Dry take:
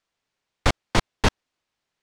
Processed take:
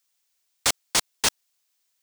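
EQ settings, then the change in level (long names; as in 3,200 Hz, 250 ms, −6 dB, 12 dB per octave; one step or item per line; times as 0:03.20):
RIAA equalisation recording
high-shelf EQ 5,400 Hz +10.5 dB
−5.5 dB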